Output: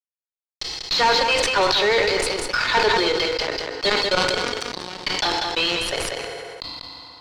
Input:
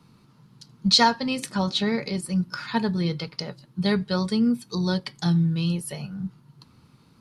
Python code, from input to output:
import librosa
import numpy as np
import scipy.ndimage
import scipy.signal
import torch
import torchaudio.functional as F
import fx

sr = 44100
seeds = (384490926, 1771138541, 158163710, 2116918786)

y = scipy.signal.sosfilt(scipy.signal.butter(16, 350.0, 'highpass', fs=sr, output='sos'), x)
y = fx.high_shelf(y, sr, hz=2400.0, db=9.0)
y = fx.transient(y, sr, attack_db=8, sustain_db=-2)
y = fx.level_steps(y, sr, step_db=19, at=(3.88, 4.99), fade=0.02)
y = fx.fuzz(y, sr, gain_db=34.0, gate_db=-34.0)
y = fx.air_absorb(y, sr, metres=160.0)
y = y + 10.0 ** (-9.0 / 20.0) * np.pad(y, (int(192 * sr / 1000.0), 0))[:len(y)]
y = fx.rev_fdn(y, sr, rt60_s=0.97, lf_ratio=0.8, hf_ratio=0.8, size_ms=20.0, drr_db=13.0)
y = fx.sustainer(y, sr, db_per_s=22.0)
y = F.gain(torch.from_numpy(y), -1.0).numpy()